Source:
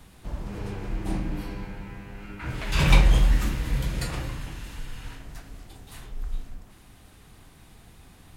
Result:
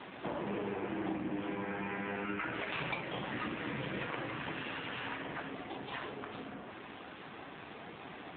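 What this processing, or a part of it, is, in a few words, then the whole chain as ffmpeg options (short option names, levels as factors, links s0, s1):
voicemail: -af "highpass=300,lowpass=3300,acompressor=threshold=0.00501:ratio=10,volume=4.73" -ar 8000 -c:a libopencore_amrnb -b:a 7400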